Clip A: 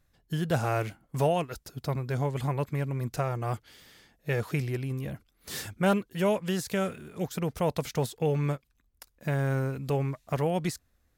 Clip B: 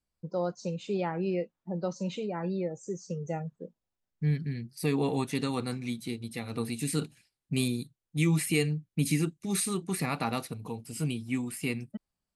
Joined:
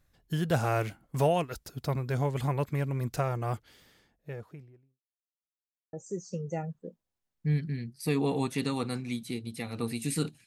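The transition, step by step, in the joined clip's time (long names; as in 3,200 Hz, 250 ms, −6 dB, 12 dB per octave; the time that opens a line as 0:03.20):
clip A
0:03.16–0:05.01: fade out and dull
0:05.01–0:05.93: silence
0:05.93: continue with clip B from 0:02.70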